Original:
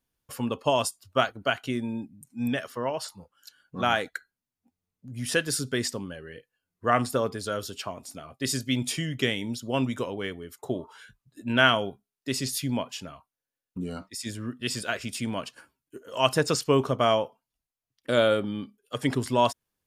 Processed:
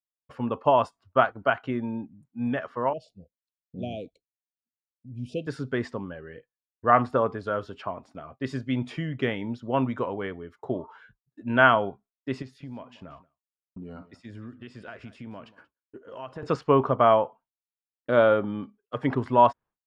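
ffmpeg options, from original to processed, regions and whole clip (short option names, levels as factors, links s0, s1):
-filter_complex "[0:a]asettb=1/sr,asplit=3[s0][s1][s2];[s0]atrim=end=2.934[s3];[s1]atrim=start=2.93:end=5.47,asetpts=PTS-STARTPTS,afade=t=in:d=0.004:c=qsin,afade=t=out:st=2.536:d=0.004:c=qsin,asuperstop=centerf=1300:order=20:qfactor=0.79,equalizer=f=1300:w=0.61:g=-14.5[s4];[s2]atrim=start=5.466[s5];[s3][s4]acrossfade=d=0.004:c1=hsin:c2=qsin[s6];[s6][s5]acrossfade=d=0.004:c1=qsin:c2=hsin,asettb=1/sr,asplit=3[s7][s8][s9];[s7]atrim=end=12.424[s10];[s8]atrim=start=12.42:end=16.43,asetpts=PTS-STARTPTS,afade=t=in:d=0.004:c=qsin,afade=t=out:st=4.006:d=0.004:c=qsin,acompressor=threshold=0.0141:ratio=4:attack=3.2:release=140:knee=1:detection=peak,aecho=1:1:183:0.133,atrim=end_sample=176841[s11];[s9]atrim=start=16.426[s12];[s10][s11]acrossfade=d=0.004:c1=hsin:c2=qsin[s13];[s13][s12]acrossfade=d=0.004:c1=qsin:c2=hsin,lowpass=1800,agate=range=0.0224:threshold=0.00355:ratio=3:detection=peak,adynamicequalizer=threshold=0.0112:dfrequency=990:dqfactor=1:tfrequency=990:tqfactor=1:attack=5:release=100:ratio=0.375:range=3.5:mode=boostabove:tftype=bell"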